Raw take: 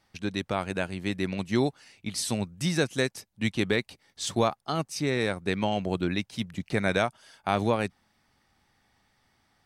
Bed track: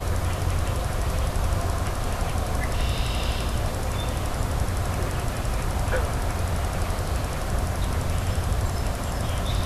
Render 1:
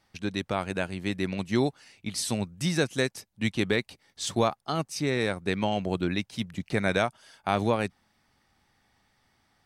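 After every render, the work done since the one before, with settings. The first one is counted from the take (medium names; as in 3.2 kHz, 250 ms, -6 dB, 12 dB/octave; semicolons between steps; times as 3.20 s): no audible change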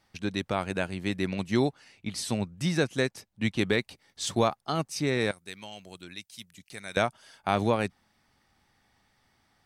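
1.66–3.57 s: treble shelf 5 kHz -6 dB; 5.31–6.97 s: pre-emphasis filter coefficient 0.9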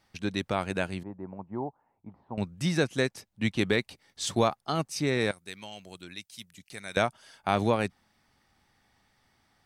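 1.03–2.38 s: four-pole ladder low-pass 1 kHz, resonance 65%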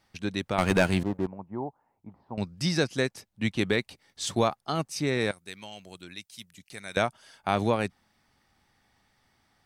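0.58–1.27 s: waveshaping leveller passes 3; 2.20–2.97 s: peaking EQ 4.9 kHz +12 dB 0.37 oct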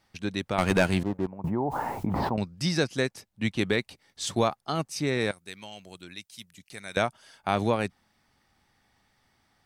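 1.44–2.43 s: level flattener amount 100%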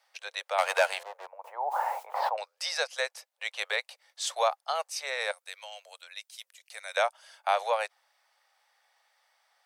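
steep high-pass 510 Hz 72 dB/octave; dynamic bell 830 Hz, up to +3 dB, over -42 dBFS, Q 3.6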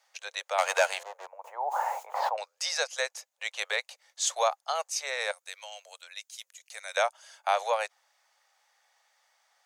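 peaking EQ 6.7 kHz +11 dB 0.27 oct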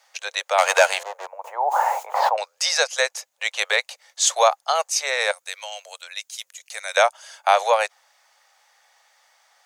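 trim +9.5 dB; peak limiter -3 dBFS, peak gain reduction 1.5 dB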